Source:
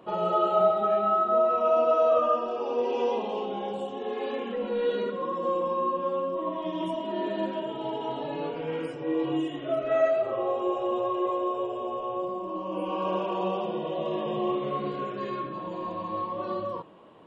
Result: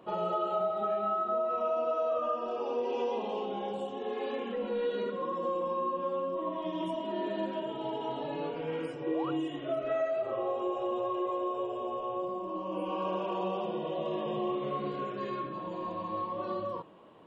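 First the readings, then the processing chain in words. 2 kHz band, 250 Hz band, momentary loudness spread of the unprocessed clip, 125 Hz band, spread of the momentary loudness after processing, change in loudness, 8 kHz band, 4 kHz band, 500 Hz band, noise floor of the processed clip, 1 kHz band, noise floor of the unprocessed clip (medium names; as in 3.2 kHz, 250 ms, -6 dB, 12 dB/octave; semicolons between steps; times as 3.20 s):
-4.5 dB, -4.0 dB, 10 LU, -4.0 dB, 6 LU, -5.5 dB, no reading, -4.0 dB, -5.5 dB, -40 dBFS, -5.0 dB, -37 dBFS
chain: compression 4:1, threshold -25 dBFS, peak gain reduction 7 dB; painted sound rise, 9.04–9.31 s, 290–1500 Hz -36 dBFS; trim -3 dB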